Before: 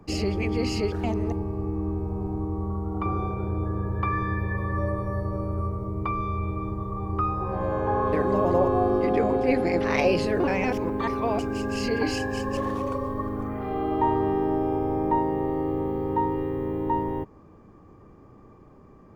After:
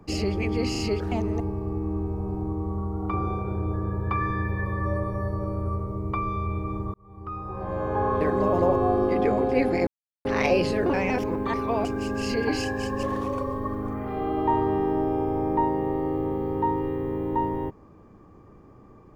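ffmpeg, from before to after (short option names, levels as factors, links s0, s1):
-filter_complex "[0:a]asplit=5[s0][s1][s2][s3][s4];[s0]atrim=end=0.752[s5];[s1]atrim=start=0.708:end=0.752[s6];[s2]atrim=start=0.708:end=6.86,asetpts=PTS-STARTPTS,afade=t=out:st=6.148:d=0.004:c=hsin[s7];[s3]atrim=start=6.86:end=9.79,asetpts=PTS-STARTPTS,afade=t=in:d=1.09,afade=t=out:st=2.926:d=0.004:c=hsin,apad=pad_dur=0.38[s8];[s4]atrim=start=9.79,asetpts=PTS-STARTPTS,afade=t=in:d=0.004:c=hsin[s9];[s5][s6]acrossfade=d=0.004:c1=hsin:c2=hsin[s10];[s7][s8][s9]concat=n=3:v=0:a=1[s11];[s10][s11]acrossfade=d=0.004:c1=hsin:c2=hsin"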